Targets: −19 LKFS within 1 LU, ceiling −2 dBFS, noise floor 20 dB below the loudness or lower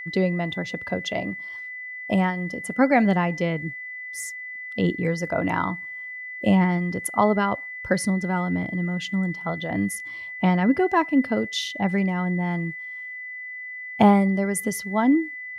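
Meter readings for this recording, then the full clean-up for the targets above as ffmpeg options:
interfering tone 2,000 Hz; level of the tone −33 dBFS; integrated loudness −24.5 LKFS; sample peak −5.0 dBFS; target loudness −19.0 LKFS
→ -af "bandreject=frequency=2000:width=30"
-af "volume=5.5dB,alimiter=limit=-2dB:level=0:latency=1"

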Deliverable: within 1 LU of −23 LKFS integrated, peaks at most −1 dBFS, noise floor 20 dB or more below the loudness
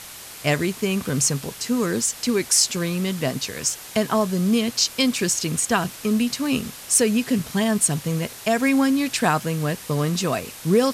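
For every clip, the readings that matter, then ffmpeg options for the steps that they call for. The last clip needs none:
background noise floor −39 dBFS; target noise floor −42 dBFS; integrated loudness −22.0 LKFS; sample peak −5.0 dBFS; target loudness −23.0 LKFS
→ -af "afftdn=noise_reduction=6:noise_floor=-39"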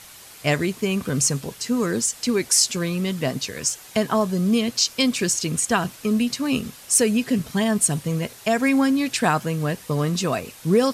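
background noise floor −44 dBFS; integrated loudness −22.0 LKFS; sample peak −5.0 dBFS; target loudness −23.0 LKFS
→ -af "volume=-1dB"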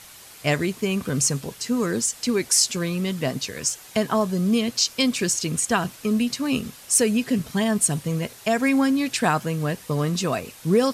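integrated loudness −23.0 LKFS; sample peak −6.0 dBFS; background noise floor −45 dBFS

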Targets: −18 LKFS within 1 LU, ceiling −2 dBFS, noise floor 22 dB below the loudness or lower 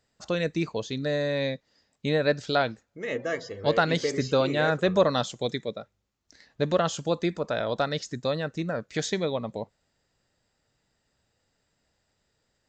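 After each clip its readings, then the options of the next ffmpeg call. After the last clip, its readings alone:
integrated loudness −27.5 LKFS; sample peak −9.5 dBFS; target loudness −18.0 LKFS
→ -af "volume=9.5dB,alimiter=limit=-2dB:level=0:latency=1"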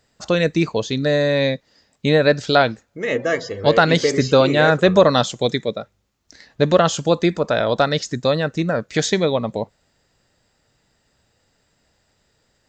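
integrated loudness −18.5 LKFS; sample peak −2.0 dBFS; background noise floor −66 dBFS

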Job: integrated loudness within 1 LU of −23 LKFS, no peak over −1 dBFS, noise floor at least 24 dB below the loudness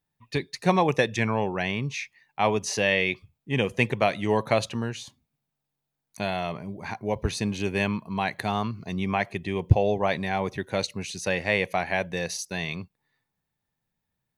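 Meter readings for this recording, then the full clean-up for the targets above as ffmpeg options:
integrated loudness −27.0 LKFS; sample peak −5.5 dBFS; target loudness −23.0 LKFS
→ -af "volume=4dB"

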